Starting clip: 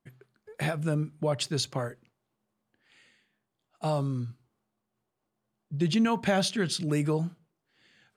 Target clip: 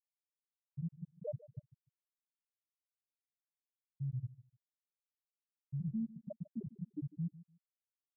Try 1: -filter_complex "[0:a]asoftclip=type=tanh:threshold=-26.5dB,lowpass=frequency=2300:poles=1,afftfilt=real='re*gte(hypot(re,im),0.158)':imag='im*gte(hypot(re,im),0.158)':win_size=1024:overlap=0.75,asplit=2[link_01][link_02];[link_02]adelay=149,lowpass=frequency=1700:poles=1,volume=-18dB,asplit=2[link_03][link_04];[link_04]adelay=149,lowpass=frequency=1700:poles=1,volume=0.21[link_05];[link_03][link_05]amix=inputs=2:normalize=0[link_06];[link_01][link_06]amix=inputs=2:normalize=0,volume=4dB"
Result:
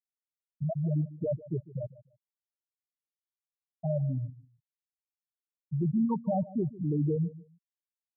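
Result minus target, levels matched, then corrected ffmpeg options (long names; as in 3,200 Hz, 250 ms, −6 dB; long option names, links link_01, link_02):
soft clipping: distortion −6 dB
-filter_complex "[0:a]asoftclip=type=tanh:threshold=-35.5dB,lowpass=frequency=2300:poles=1,afftfilt=real='re*gte(hypot(re,im),0.158)':imag='im*gte(hypot(re,im),0.158)':win_size=1024:overlap=0.75,asplit=2[link_01][link_02];[link_02]adelay=149,lowpass=frequency=1700:poles=1,volume=-18dB,asplit=2[link_03][link_04];[link_04]adelay=149,lowpass=frequency=1700:poles=1,volume=0.21[link_05];[link_03][link_05]amix=inputs=2:normalize=0[link_06];[link_01][link_06]amix=inputs=2:normalize=0,volume=4dB"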